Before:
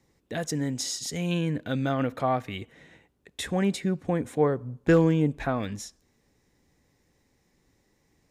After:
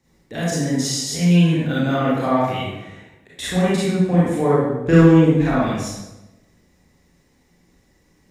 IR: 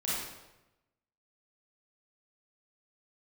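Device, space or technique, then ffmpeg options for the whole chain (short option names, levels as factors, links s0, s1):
bathroom: -filter_complex "[1:a]atrim=start_sample=2205[s0];[0:a][s0]afir=irnorm=-1:irlink=0,volume=1.33"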